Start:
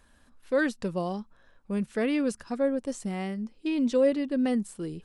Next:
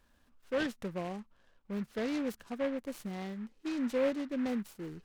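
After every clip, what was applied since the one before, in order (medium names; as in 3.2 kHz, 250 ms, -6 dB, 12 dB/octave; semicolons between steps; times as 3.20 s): delay time shaken by noise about 1.4 kHz, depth 0.058 ms; trim -7.5 dB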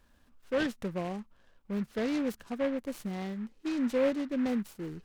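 bass shelf 320 Hz +2.5 dB; trim +2 dB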